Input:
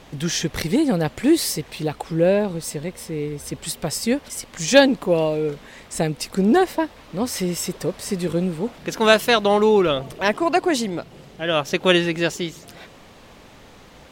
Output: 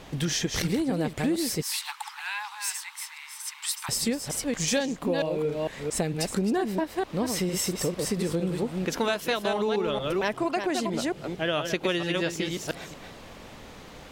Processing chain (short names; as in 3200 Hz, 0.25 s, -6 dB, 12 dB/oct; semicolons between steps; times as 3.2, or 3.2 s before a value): reverse delay 0.227 s, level -6 dB; 1.62–3.89 steep high-pass 850 Hz 96 dB/oct; compressor 6:1, threshold -24 dBFS, peak gain reduction 16.5 dB